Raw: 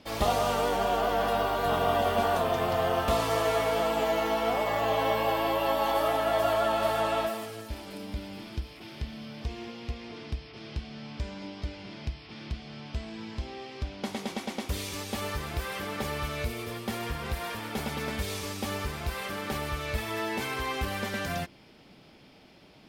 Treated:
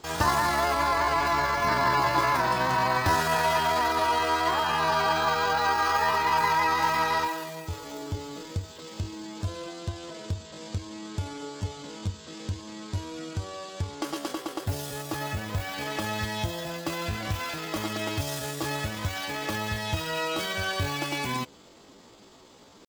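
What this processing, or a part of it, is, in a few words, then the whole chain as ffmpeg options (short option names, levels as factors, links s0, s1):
chipmunk voice: -filter_complex "[0:a]asetrate=64194,aresample=44100,atempo=0.686977,asettb=1/sr,asplit=3[s0][s1][s2];[s0]atrim=end=14.334[s3];[s1]atrim=start=14.33:end=15.78,asetpts=PTS-STARTPTS,afade=t=in:d=0.004:c=qsin,afade=t=out:st=1.446:d=0.004:c=qsin,equalizer=f=5200:w=0.37:g=-4[s4];[s2]atrim=start=15.776[s5];[s3][s4]acrossfade=d=0.004:c1=hsin:c2=qsin[s6];[s6][s5]acrossfade=d=0.004:c1=qsin:c2=hsin,volume=1.33"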